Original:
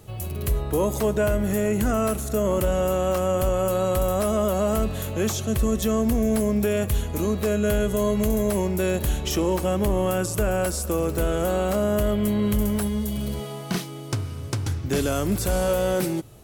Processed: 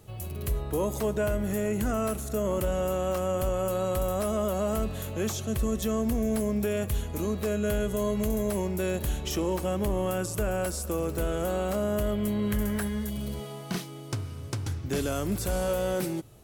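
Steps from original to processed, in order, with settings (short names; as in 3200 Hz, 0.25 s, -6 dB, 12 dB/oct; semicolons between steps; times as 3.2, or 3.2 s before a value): 12.5–13.1 bell 1700 Hz +11.5 dB 0.55 oct; gain -5.5 dB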